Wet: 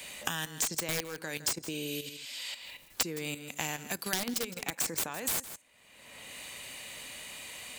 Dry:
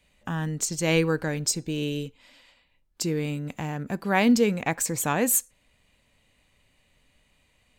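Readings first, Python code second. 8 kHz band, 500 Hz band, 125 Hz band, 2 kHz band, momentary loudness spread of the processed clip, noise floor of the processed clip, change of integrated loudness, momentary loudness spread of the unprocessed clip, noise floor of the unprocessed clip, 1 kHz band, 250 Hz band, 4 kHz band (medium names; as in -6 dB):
-5.0 dB, -13.0 dB, -15.5 dB, -6.0 dB, 11 LU, -58 dBFS, -9.0 dB, 11 LU, -67 dBFS, -10.0 dB, -15.0 dB, -0.5 dB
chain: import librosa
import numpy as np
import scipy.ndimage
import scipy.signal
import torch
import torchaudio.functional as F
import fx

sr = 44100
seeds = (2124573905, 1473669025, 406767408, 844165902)

y = fx.highpass(x, sr, hz=480.0, slope=6)
y = fx.spec_repair(y, sr, seeds[0], start_s=1.76, length_s=0.53, low_hz=940.0, high_hz=10000.0, source='both')
y = fx.high_shelf(y, sr, hz=5000.0, db=10.0)
y = fx.level_steps(y, sr, step_db=12)
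y = (np.mod(10.0 ** (18.5 / 20.0) * y + 1.0, 2.0) - 1.0) / 10.0 ** (18.5 / 20.0)
y = y + 10.0 ** (-16.5 / 20.0) * np.pad(y, (int(160 * sr / 1000.0), 0))[:len(y)]
y = fx.band_squash(y, sr, depth_pct=100)
y = y * 10.0 ** (-3.0 / 20.0)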